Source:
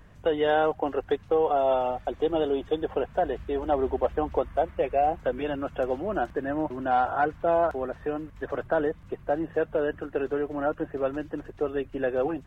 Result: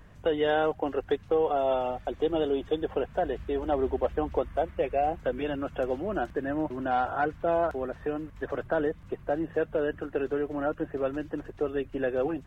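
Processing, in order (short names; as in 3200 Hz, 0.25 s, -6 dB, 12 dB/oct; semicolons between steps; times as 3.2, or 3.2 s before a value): dynamic EQ 860 Hz, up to -4 dB, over -35 dBFS, Q 0.98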